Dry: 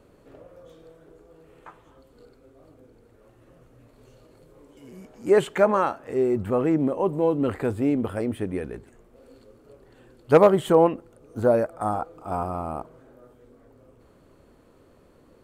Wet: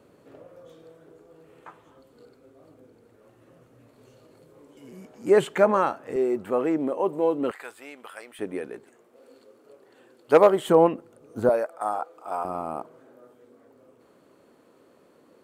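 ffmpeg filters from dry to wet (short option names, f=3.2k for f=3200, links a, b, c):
-af "asetnsamples=n=441:p=0,asendcmd='6.16 highpass f 310;7.51 highpass f 1300;8.39 highpass f 310;10.69 highpass f 140;11.49 highpass f 520;12.45 highpass f 220',highpass=120"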